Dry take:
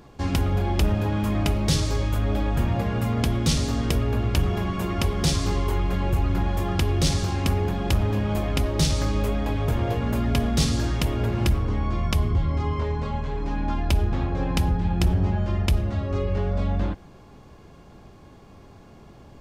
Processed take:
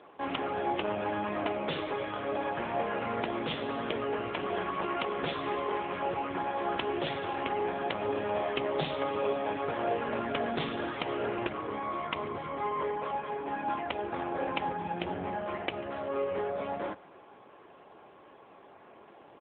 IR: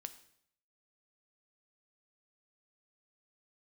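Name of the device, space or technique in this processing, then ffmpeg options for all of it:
telephone: -filter_complex "[0:a]equalizer=f=220:w=1.1:g=-4,asplit=3[a][b][c];[a]afade=t=out:st=8.01:d=0.02[d];[b]aecho=1:1:7.5:0.34,afade=t=in:st=8.01:d=0.02,afade=t=out:st=9.48:d=0.02[e];[c]afade=t=in:st=9.48:d=0.02[f];[d][e][f]amix=inputs=3:normalize=0,highpass=380,lowpass=3k,aecho=1:1:142|284:0.0668|0.0201,volume=2dB" -ar 8000 -c:a libopencore_amrnb -b:a 7950

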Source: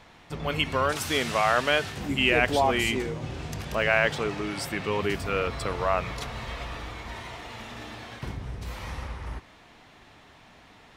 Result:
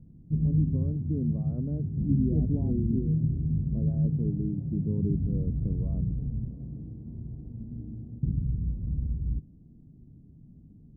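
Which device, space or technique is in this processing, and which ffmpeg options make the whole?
the neighbour's flat through the wall: -filter_complex "[0:a]lowpass=f=250:w=0.5412,lowpass=f=250:w=1.3066,equalizer=f=150:t=o:w=0.41:g=6,asettb=1/sr,asplit=3[a][b][c];[a]atrim=end=6.484[d];[b]atrim=start=6.48:end=7.15,asetpts=PTS-STARTPTS,afade=t=in:d=0.004:c=qsin,afade=t=out:st=0.666:d=0.004:c=qsin,highpass=120[e];[c]atrim=start=7.146[f];[d][e]acrossfade=d=0.004:c1=hsin:c2=qsin[g];[g][f]acrossfade=d=0.004:c1=qsin:c2=hsin,volume=6.5dB"

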